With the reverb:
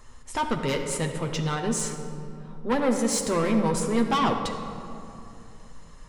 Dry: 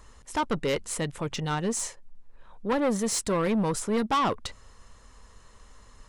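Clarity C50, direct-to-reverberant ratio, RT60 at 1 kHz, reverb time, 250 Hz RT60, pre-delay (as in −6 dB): 6.0 dB, 2.0 dB, 2.6 s, 2.8 s, 3.6 s, 8 ms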